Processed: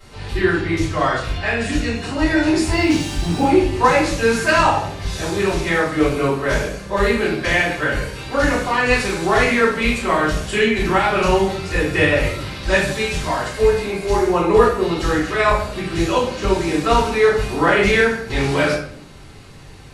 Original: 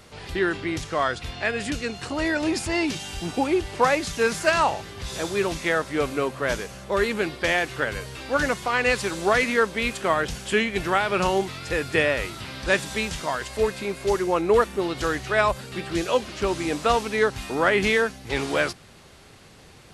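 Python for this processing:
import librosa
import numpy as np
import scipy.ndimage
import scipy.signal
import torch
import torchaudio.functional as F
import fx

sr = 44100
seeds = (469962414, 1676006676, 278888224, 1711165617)

y = fx.law_mismatch(x, sr, coded='mu', at=(2.66, 3.47))
y = fx.room_shoebox(y, sr, seeds[0], volume_m3=97.0, walls='mixed', distance_m=3.9)
y = y * 10.0 ** (-8.0 / 20.0)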